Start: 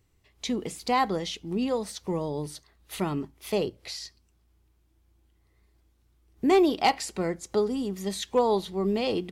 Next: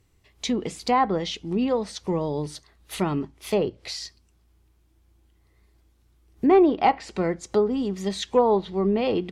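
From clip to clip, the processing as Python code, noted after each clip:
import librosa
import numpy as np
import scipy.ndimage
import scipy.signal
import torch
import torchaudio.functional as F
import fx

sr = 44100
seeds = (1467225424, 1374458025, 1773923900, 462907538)

y = fx.env_lowpass_down(x, sr, base_hz=1700.0, full_db=-21.0)
y = y * 10.0 ** (4.0 / 20.0)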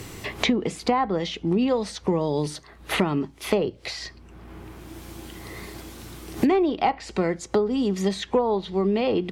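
y = fx.band_squash(x, sr, depth_pct=100)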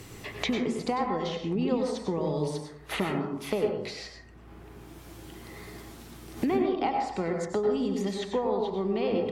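y = fx.rev_plate(x, sr, seeds[0], rt60_s=0.74, hf_ratio=0.35, predelay_ms=85, drr_db=2.0)
y = y * 10.0 ** (-7.5 / 20.0)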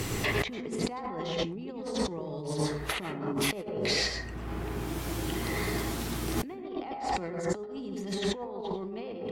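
y = fx.over_compress(x, sr, threshold_db=-39.0, ratio=-1.0)
y = y * 10.0 ** (5.0 / 20.0)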